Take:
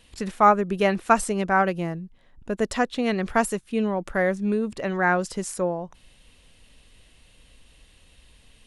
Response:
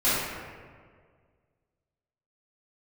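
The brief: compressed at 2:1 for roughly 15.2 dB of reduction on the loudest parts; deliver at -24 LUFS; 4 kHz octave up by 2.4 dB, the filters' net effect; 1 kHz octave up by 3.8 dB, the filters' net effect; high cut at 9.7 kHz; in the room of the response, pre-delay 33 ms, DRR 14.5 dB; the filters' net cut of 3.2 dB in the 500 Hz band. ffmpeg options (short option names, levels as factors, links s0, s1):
-filter_complex "[0:a]lowpass=9700,equalizer=f=500:t=o:g=-6.5,equalizer=f=1000:t=o:g=7,equalizer=f=4000:t=o:g=3,acompressor=threshold=0.0141:ratio=2,asplit=2[s0][s1];[1:a]atrim=start_sample=2205,adelay=33[s2];[s1][s2]afir=irnorm=-1:irlink=0,volume=0.0316[s3];[s0][s3]amix=inputs=2:normalize=0,volume=3.16"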